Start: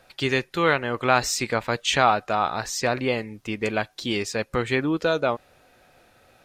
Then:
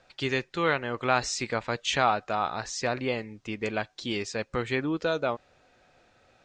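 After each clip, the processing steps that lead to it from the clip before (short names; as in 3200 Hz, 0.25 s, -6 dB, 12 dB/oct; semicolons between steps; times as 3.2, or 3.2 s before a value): steep low-pass 7700 Hz 36 dB/oct; gain -5 dB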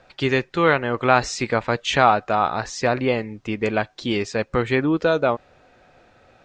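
high shelf 3200 Hz -9 dB; gain +9 dB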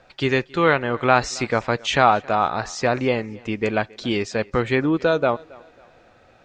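thinning echo 0.272 s, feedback 38%, high-pass 190 Hz, level -23.5 dB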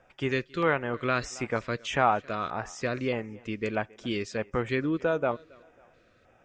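LFO notch square 1.6 Hz 820–4200 Hz; gain -7.5 dB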